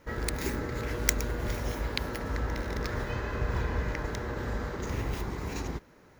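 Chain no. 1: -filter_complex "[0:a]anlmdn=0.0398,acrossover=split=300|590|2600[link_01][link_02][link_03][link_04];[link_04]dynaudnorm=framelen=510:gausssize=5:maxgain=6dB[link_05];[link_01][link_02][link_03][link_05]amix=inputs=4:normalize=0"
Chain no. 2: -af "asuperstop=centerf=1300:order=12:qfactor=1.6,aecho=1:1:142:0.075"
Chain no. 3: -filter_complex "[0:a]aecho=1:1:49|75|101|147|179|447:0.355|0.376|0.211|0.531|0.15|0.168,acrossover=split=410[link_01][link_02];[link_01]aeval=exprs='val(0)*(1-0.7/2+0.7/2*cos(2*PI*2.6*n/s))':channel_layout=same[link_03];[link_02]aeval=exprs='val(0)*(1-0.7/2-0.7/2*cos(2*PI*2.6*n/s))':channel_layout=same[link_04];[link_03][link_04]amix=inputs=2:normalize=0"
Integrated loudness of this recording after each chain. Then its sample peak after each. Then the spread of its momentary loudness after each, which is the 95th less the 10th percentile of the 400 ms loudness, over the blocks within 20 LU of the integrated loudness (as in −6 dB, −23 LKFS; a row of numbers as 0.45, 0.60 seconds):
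−33.0, −33.5, −34.5 LKFS; −2.0, −2.0, −8.5 dBFS; 6, 7, 4 LU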